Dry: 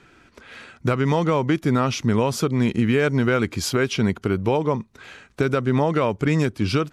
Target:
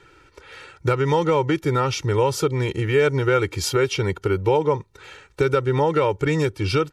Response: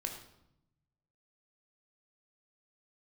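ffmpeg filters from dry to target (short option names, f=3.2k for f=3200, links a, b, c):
-af "aecho=1:1:2.2:0.96,volume=-2dB"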